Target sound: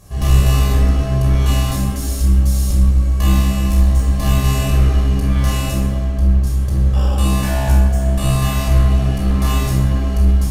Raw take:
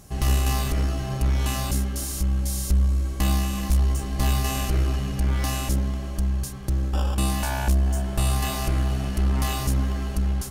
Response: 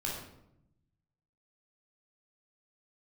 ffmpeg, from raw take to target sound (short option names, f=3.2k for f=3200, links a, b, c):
-filter_complex "[0:a]asettb=1/sr,asplit=3[a][b][c];[a]atrim=end=6.054[d];[b]atrim=start=6.05:end=6.47,asetpts=PTS-STARTPTS,afade=t=in:d=0.004:c=qsin,afade=t=out:st=0.416:d=0.004:c=qsin,highshelf=f=4.6k:g=-7.5[e];[c]atrim=start=6.466[f];[d][e]acrossfade=d=0.004:c1=hsin:c2=qsin[g];[g][f]acrossfade=d=0.004:c1=qsin:c2=hsin[h];[1:a]atrim=start_sample=2205,asetrate=32634,aresample=44100[i];[h][i]afir=irnorm=-1:irlink=0"